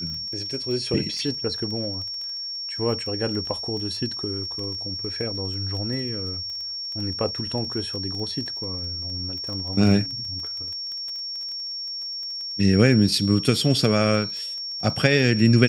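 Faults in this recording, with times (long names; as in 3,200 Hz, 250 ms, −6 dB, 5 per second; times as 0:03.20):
surface crackle 16 per second −31 dBFS
whistle 5,500 Hz −29 dBFS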